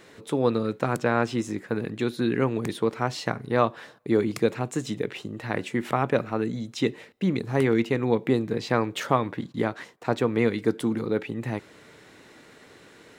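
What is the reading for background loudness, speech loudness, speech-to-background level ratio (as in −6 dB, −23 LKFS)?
−46.0 LKFS, −27.0 LKFS, 19.0 dB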